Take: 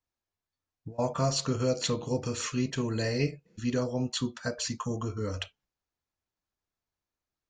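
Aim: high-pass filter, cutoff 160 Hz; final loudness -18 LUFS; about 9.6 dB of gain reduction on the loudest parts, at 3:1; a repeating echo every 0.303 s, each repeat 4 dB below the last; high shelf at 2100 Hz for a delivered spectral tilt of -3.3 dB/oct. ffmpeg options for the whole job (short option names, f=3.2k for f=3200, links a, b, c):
-af "highpass=160,highshelf=f=2.1k:g=6.5,acompressor=threshold=-35dB:ratio=3,aecho=1:1:303|606|909|1212|1515|1818|2121|2424|2727:0.631|0.398|0.25|0.158|0.0994|0.0626|0.0394|0.0249|0.0157,volume=17.5dB"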